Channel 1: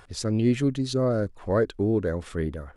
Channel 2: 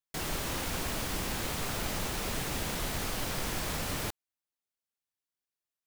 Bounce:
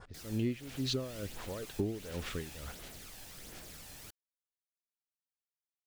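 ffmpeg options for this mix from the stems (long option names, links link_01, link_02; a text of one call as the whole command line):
ffmpeg -i stem1.wav -i stem2.wav -filter_complex "[0:a]lowpass=6500,aeval=exprs='val(0)*pow(10,-23*(0.5-0.5*cos(2*PI*2.2*n/s))/20)':channel_layout=same,volume=1dB[link_01];[1:a]equalizer=frequency=1000:width=2.4:gain=-6.5,aphaser=in_gain=1:out_gain=1:delay=1.2:decay=0.42:speed=1.4:type=sinusoidal,bass=frequency=250:gain=-4,treble=frequency=4000:gain=5,volume=-18dB[link_02];[link_01][link_02]amix=inputs=2:normalize=0,adynamicequalizer=threshold=0.00224:dfrequency=2700:dqfactor=1.2:tfrequency=2700:tqfactor=1.2:attack=5:release=100:ratio=0.375:range=3:mode=boostabove:tftype=bell,acompressor=threshold=-31dB:ratio=5" out.wav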